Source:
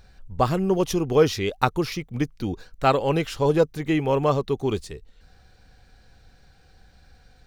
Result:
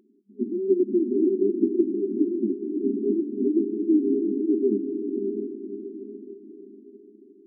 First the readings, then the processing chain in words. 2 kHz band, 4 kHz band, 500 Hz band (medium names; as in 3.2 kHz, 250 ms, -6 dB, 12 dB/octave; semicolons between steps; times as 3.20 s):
under -40 dB, under -40 dB, -1.5 dB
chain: sample-and-hold 36×; FFT band-pass 200–410 Hz; echo that smears into a reverb 582 ms, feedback 44%, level -3.5 dB; trim +4 dB